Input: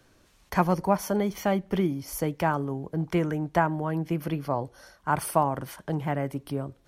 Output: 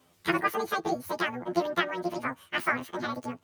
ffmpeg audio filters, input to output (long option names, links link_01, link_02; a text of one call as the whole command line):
ffmpeg -i in.wav -filter_complex "[0:a]afftfilt=real='re':imag='-im':win_size=2048:overlap=0.75,highpass=64,adynamicequalizer=threshold=0.00355:dfrequency=1600:dqfactor=3.4:tfrequency=1600:tqfactor=3.4:attack=5:release=100:ratio=0.375:range=2.5:mode=cutabove:tftype=bell,asplit=2[link_01][link_02];[link_02]asetrate=22050,aresample=44100,atempo=2,volume=-10dB[link_03];[link_01][link_03]amix=inputs=2:normalize=0,aresample=22050,aresample=44100,asetrate=88200,aresample=44100,volume=1dB" out.wav